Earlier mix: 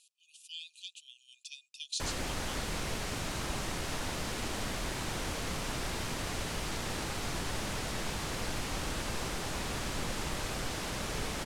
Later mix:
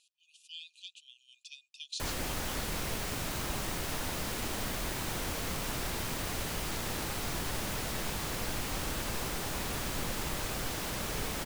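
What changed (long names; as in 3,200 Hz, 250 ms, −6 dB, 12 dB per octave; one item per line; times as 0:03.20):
speech: add high-frequency loss of the air 81 metres
master: remove low-pass filter 9,300 Hz 12 dB per octave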